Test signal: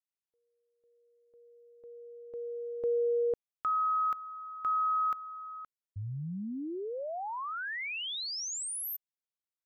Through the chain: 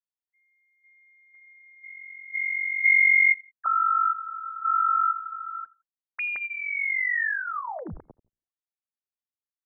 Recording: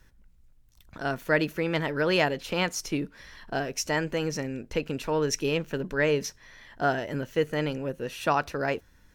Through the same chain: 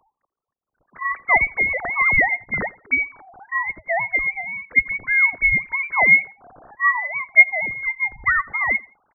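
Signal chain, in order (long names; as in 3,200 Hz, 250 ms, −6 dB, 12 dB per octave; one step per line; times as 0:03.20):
three sine waves on the formant tracks
voice inversion scrambler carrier 2,600 Hz
repeating echo 85 ms, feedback 26%, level −23 dB
level +8 dB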